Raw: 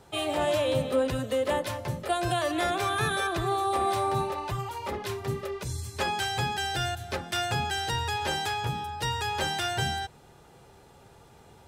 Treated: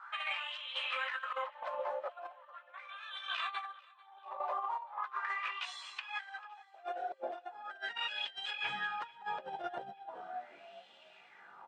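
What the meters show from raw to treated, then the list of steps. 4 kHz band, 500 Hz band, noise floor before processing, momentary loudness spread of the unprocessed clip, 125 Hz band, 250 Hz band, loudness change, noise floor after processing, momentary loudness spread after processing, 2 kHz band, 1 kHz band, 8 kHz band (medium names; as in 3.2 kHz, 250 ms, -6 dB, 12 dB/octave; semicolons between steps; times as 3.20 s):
-9.0 dB, -16.0 dB, -55 dBFS, 7 LU, under -35 dB, -26.5 dB, -10.5 dB, -61 dBFS, 17 LU, -6.5 dB, -10.0 dB, -25.5 dB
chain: band-stop 430 Hz, Q 12; wah-wah 0.39 Hz 550–3100 Hz, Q 5.3; FFT filter 1 kHz 0 dB, 4.1 kHz -9 dB, 6.7 kHz -14 dB; frequency-shifting echo 369 ms, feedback 36%, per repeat -53 Hz, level -21.5 dB; high-pass sweep 1.1 kHz -> 170 Hz, 5.85–8.21 s; steep low-pass 8.8 kHz; tilt EQ +2.5 dB/octave; doubling 15 ms -13 dB; chorus voices 6, 0.97 Hz, delay 18 ms, depth 3 ms; compressor with a negative ratio -51 dBFS, ratio -0.5; on a send: feedback delay 442 ms, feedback 56%, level -24 dB; on the sum: trim +9 dB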